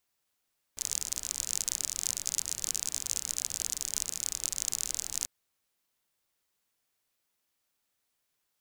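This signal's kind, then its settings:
rain-like ticks over hiss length 4.49 s, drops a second 45, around 6,800 Hz, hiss −16.5 dB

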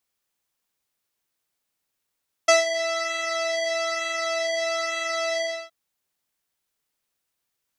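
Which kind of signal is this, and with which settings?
subtractive patch with pulse-width modulation E5, oscillator 2 square, interval +19 semitones, detune 22 cents, sub −24 dB, noise −30 dB, filter lowpass, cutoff 4,500 Hz, Q 2, filter envelope 0.5 octaves, attack 8.8 ms, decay 0.15 s, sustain −12 dB, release 0.29 s, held 2.93 s, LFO 1.1 Hz, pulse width 31%, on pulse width 19%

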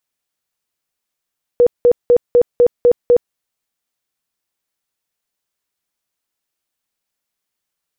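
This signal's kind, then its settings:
tone bursts 484 Hz, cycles 32, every 0.25 s, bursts 7, −6 dBFS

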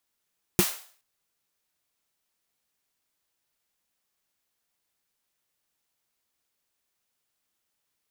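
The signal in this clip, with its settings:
synth snare length 0.42 s, tones 190 Hz, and 350 Hz, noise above 500 Hz, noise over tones −6.5 dB, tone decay 0.08 s, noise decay 0.47 s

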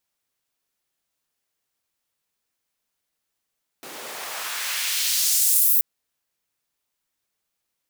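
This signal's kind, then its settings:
filter sweep on noise pink, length 1.98 s highpass, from 310 Hz, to 16,000 Hz, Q 1, exponential, gain ramp +31 dB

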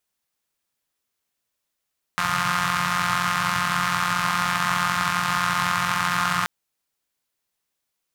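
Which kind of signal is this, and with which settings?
pulse-train model of a four-cylinder engine, steady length 4.28 s, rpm 5,300, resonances 140/1,200 Hz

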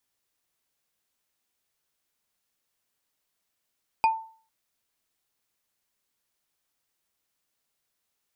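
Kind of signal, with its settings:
struck wood bar, lowest mode 892 Hz, decay 0.44 s, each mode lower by 8.5 dB, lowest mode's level −15 dB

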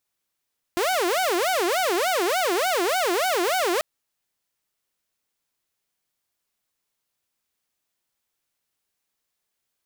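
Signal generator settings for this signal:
siren wail 341–760 Hz 3.4 per second saw −18 dBFS 3.04 s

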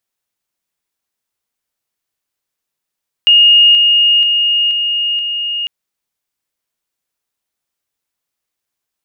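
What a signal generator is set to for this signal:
level staircase 2,850 Hz −4 dBFS, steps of −3 dB, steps 5, 0.48 s 0.00 s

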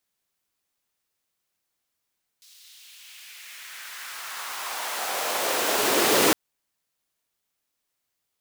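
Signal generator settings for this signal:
filter sweep on noise pink, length 3.91 s highpass, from 4,300 Hz, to 310 Hz, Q 1.7, exponential, gain ramp +32 dB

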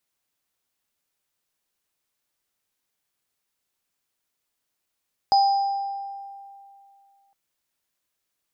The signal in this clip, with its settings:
inharmonic partials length 2.01 s, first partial 793 Hz, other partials 4,980 Hz, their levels −10 dB, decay 2.48 s, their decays 1.10 s, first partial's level −13.5 dB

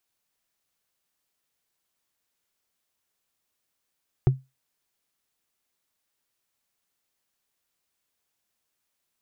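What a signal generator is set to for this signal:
struck wood, lowest mode 132 Hz, decay 0.22 s, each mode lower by 8 dB, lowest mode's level −11 dB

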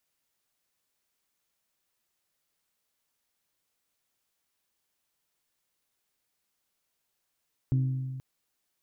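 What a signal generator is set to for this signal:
struck glass bell, length 0.48 s, lowest mode 131 Hz, decay 1.90 s, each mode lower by 10.5 dB, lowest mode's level −21 dB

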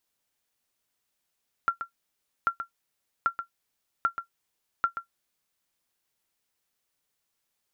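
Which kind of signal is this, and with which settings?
ping with an echo 1,370 Hz, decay 0.11 s, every 0.79 s, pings 5, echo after 0.13 s, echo −9.5 dB −14.5 dBFS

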